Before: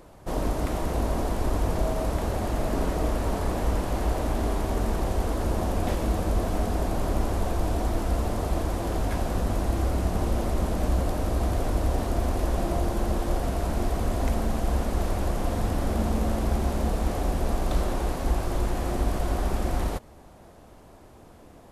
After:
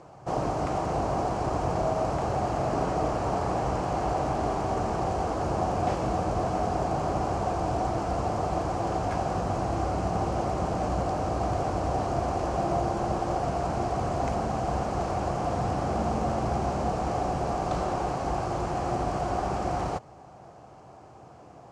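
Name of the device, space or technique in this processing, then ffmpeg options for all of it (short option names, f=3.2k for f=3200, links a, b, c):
car door speaker: -af "highpass=100,equalizer=f=130:t=q:w=4:g=8,equalizer=f=240:t=q:w=4:g=-6,equalizer=f=760:t=q:w=4:g=8,equalizer=f=1.2k:t=q:w=4:g=4,equalizer=f=1.9k:t=q:w=4:g=-4,equalizer=f=3.6k:t=q:w=4:g=-8,lowpass=f=7.3k:w=0.5412,lowpass=f=7.3k:w=1.3066"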